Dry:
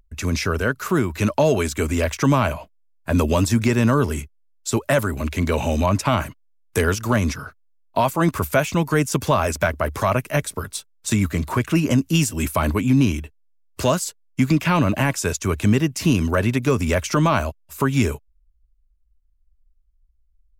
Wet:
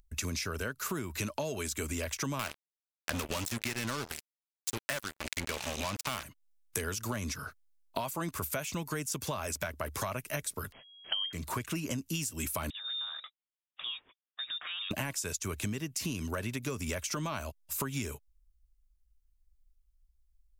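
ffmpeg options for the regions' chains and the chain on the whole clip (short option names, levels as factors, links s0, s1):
-filter_complex "[0:a]asettb=1/sr,asplit=3[s0][s1][s2];[s0]atrim=end=2.394[s3];[s1]atrim=start=2.39:end=6.23,asetpts=PTS-STARTPTS,afade=t=in:d=0.004:c=qsin,afade=t=out:st=3.836:d=0.004:c=qsin,equalizer=f=2100:w=0.57:g=8,acrusher=bits=2:mix=0:aa=0.5[s4];[s2]atrim=start=6.226[s5];[s3][s4]acrossfade=d=0.004:c1=hsin:c2=qsin[s6];[s6][s5]acrossfade=d=0.004:c1=qsin:c2=hsin,asettb=1/sr,asplit=3[s7][s8][s9];[s7]atrim=end=10.724[s10];[s8]atrim=start=10.72:end=11.33,asetpts=PTS-STARTPTS,afade=t=in:d=0.004:c=qsin,afade=t=out:st=0.606:d=0.004:c=qsin,asubboost=boost=9:cutoff=130,lowpass=f=2800:t=q:w=0.5098,lowpass=f=2800:t=q:w=0.6013,lowpass=f=2800:t=q:w=0.9,lowpass=f=2800:t=q:w=2.563,afreqshift=-3300[s11];[s9]atrim=start=11.326[s12];[s10][s11]acrossfade=d=0.004:c1=hsin:c2=qsin[s13];[s13][s12]acrossfade=d=0.004:c1=qsin:c2=hsin,asettb=1/sr,asplit=3[s14][s15][s16];[s14]atrim=end=12.704[s17];[s15]atrim=start=12.7:end=14.91,asetpts=PTS-STARTPTS,afade=t=in:d=0.004:c=qsin,afade=t=out:st=2.206:d=0.004:c=qsin,highpass=350,acompressor=threshold=0.0141:ratio=4:attack=3.2:release=140:knee=1:detection=peak,lowpass=f=3300:t=q:w=0.5098,lowpass=f=3300:t=q:w=0.6013,lowpass=f=3300:t=q:w=0.9,lowpass=f=3300:t=q:w=2.563,afreqshift=-3900[s18];[s16]atrim=start=14.906[s19];[s17][s18]acrossfade=d=0.004:c1=hsin:c2=qsin[s20];[s20][s19]acrossfade=d=0.004:c1=qsin:c2=hsin,highshelf=f=2900:g=11,acompressor=threshold=0.0562:ratio=12,volume=0.473"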